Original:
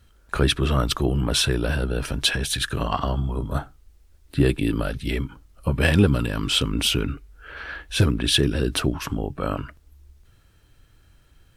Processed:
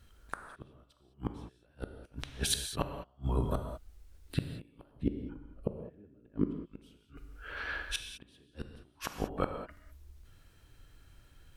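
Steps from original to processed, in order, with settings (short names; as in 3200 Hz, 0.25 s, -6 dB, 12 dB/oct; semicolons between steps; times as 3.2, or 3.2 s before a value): dynamic EQ 760 Hz, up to +4 dB, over -38 dBFS, Q 1.3; in parallel at -8.5 dB: soft clip -12 dBFS, distortion -16 dB; on the sum: flipped gate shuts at -11 dBFS, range -41 dB; 4.91–6.66 EQ curve 120 Hz 0 dB, 360 Hz +9 dB, 1100 Hz -12 dB, 1700 Hz -7 dB, 5600 Hz -23 dB; non-linear reverb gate 0.23 s flat, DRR 5.5 dB; gain -6.5 dB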